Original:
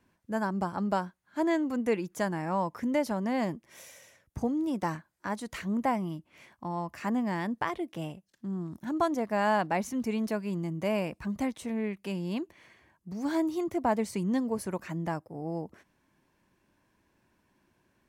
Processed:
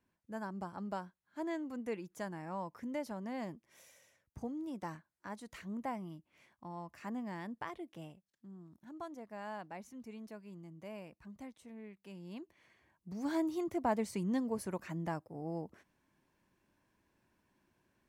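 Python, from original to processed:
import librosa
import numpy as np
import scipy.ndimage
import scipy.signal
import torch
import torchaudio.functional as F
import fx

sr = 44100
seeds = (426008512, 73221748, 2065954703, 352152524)

y = fx.gain(x, sr, db=fx.line((7.95, -11.5), (8.57, -18.0), (11.97, -18.0), (13.12, -5.5)))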